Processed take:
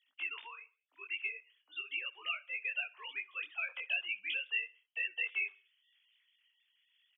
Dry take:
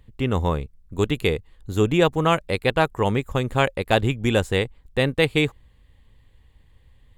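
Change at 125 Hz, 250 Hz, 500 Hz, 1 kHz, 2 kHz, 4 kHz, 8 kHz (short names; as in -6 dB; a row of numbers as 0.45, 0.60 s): under -40 dB, under -40 dB, -39.0 dB, -27.0 dB, -8.0 dB, -12.5 dB, under -40 dB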